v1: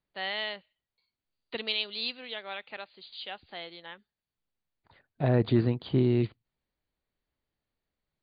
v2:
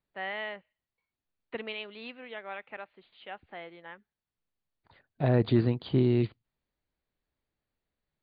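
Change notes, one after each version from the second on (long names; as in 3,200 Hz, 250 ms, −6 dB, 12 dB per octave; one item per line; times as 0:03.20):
first voice: add low-pass filter 2,300 Hz 24 dB per octave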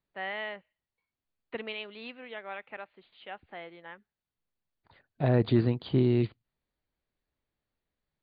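nothing changed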